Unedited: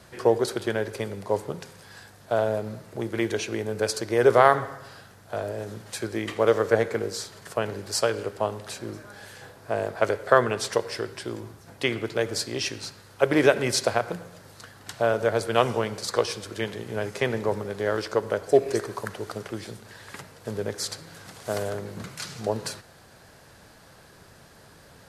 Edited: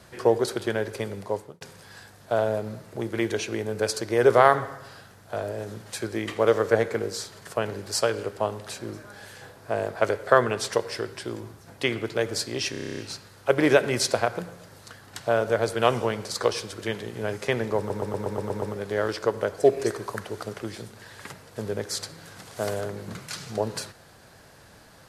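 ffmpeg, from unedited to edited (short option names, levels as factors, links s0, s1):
-filter_complex "[0:a]asplit=18[s0][s1][s2][s3][s4][s5][s6][s7][s8][s9][s10][s11][s12][s13][s14][s15][s16][s17];[s0]atrim=end=1.61,asetpts=PTS-STARTPTS,afade=t=out:st=1.2:d=0.41[s18];[s1]atrim=start=1.61:end=12.742,asetpts=PTS-STARTPTS,afade=t=in:d=0.004:c=hsin[s19];[s2]atrim=start=12.708:end=12.742[s20];[s3]atrim=start=12.708:end=12.742[s21];[s4]atrim=start=12.708:end=12.742[s22];[s5]atrim=start=12.708:end=12.742[s23];[s6]atrim=start=12.708:end=12.742[s24];[s7]atrim=start=12.708:end=12.742[s25];[s8]atrim=start=12.708:end=12.742[s26];[s9]atrim=start=12.708:end=12.742[s27];[s10]atrim=start=12.708:end=17.632[s28];[s11]atrim=start=17.508:end=17.632[s29];[s12]atrim=start=17.508:end=17.632[s30];[s13]atrim=start=17.508:end=17.632[s31];[s14]atrim=start=17.508:end=17.632[s32];[s15]atrim=start=17.508:end=17.632[s33];[s16]atrim=start=17.508:end=17.632[s34];[s17]atrim=start=17.508[s35];[s18][s19]concat=n=2:v=0:a=1[s36];[s36][s20]acrossfade=d=0.004:c1=hsin:c2=hsin[s37];[s37][s21]acrossfade=d=0.004:c1=hsin:c2=hsin[s38];[s38][s22]acrossfade=d=0.004:c1=hsin:c2=hsin[s39];[s39][s23]acrossfade=d=0.004:c1=hsin:c2=hsin[s40];[s40][s24]acrossfade=d=0.004:c1=hsin:c2=hsin[s41];[s41][s25]acrossfade=d=0.004:c1=hsin:c2=hsin[s42];[s42][s26]acrossfade=d=0.004:c1=hsin:c2=hsin[s43];[s43][s27]acrossfade=d=0.004:c1=hsin:c2=hsin[s44];[s44][s28]acrossfade=d=0.004:c1=hsin:c2=hsin[s45];[s45][s29]acrossfade=d=0.004:c1=hsin:c2=hsin[s46];[s46][s30]acrossfade=d=0.004:c1=hsin:c2=hsin[s47];[s47][s31]acrossfade=d=0.004:c1=hsin:c2=hsin[s48];[s48][s32]acrossfade=d=0.004:c1=hsin:c2=hsin[s49];[s49][s33]acrossfade=d=0.004:c1=hsin:c2=hsin[s50];[s50][s34]acrossfade=d=0.004:c1=hsin:c2=hsin[s51];[s51][s35]acrossfade=d=0.004:c1=hsin:c2=hsin"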